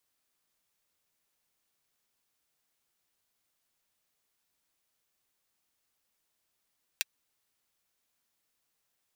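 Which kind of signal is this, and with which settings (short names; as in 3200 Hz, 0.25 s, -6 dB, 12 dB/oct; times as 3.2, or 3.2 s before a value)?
closed hi-hat, high-pass 2200 Hz, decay 0.03 s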